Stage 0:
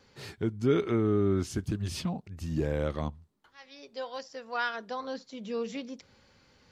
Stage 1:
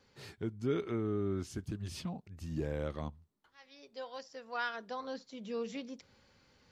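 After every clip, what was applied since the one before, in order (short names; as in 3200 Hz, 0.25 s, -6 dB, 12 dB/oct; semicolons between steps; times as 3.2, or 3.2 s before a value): vocal rider within 4 dB 2 s; gain -7.5 dB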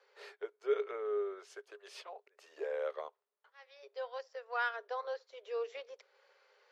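rippled Chebyshev high-pass 400 Hz, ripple 3 dB; transient shaper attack 0 dB, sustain -4 dB; LPF 2200 Hz 6 dB/oct; gain +4.5 dB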